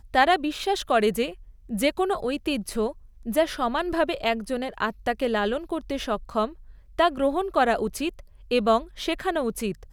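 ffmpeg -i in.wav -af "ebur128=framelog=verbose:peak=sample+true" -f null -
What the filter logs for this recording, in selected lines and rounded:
Integrated loudness:
  I:         -25.6 LUFS
  Threshold: -35.8 LUFS
Loudness range:
  LRA:         1.7 LU
  Threshold: -46.3 LUFS
  LRA low:   -27.0 LUFS
  LRA high:  -25.3 LUFS
Sample peak:
  Peak:       -6.4 dBFS
True peak:
  Peak:       -6.3 dBFS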